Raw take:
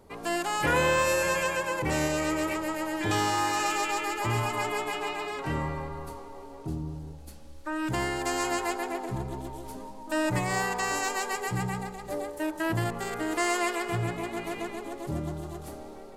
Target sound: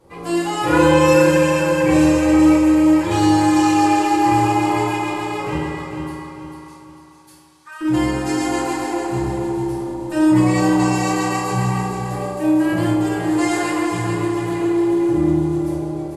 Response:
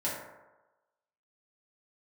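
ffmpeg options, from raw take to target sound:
-filter_complex "[0:a]asettb=1/sr,asplit=3[s0][s1][s2];[s0]atrim=end=5.554[s3];[s1]atrim=start=5.55:end=7.81,asetpts=PTS-STARTPTS,afade=t=in:d=0.004:c=qsin,afade=t=out:st=2.256:d=0.004:c=qsin,highpass=f=1100:w=0.5412,highpass=f=1100:w=1.3066[s4];[s2]atrim=start=7.806[s5];[s3][s4]acrossfade=d=0.004:c1=hsin:c2=qsin[s6];[s6][s5]acrossfade=d=0.004:c1=qsin:c2=hsin,aecho=1:1:446|892|1338|1784:0.447|0.165|0.0612|0.0226[s7];[1:a]atrim=start_sample=2205,asetrate=24696,aresample=44100[s8];[s7][s8]afir=irnorm=-1:irlink=0,volume=0.708"

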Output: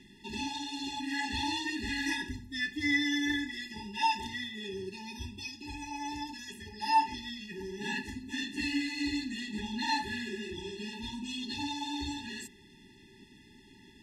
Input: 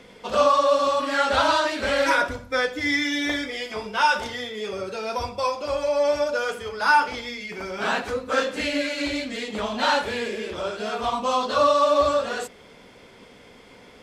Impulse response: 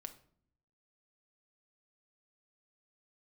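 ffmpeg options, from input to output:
-af "asuperstop=centerf=1200:order=20:qfactor=1.7,afftfilt=real='re*eq(mod(floor(b*sr/1024/410),2),0)':imag='im*eq(mod(floor(b*sr/1024/410),2),0)':win_size=1024:overlap=0.75,volume=0.631"

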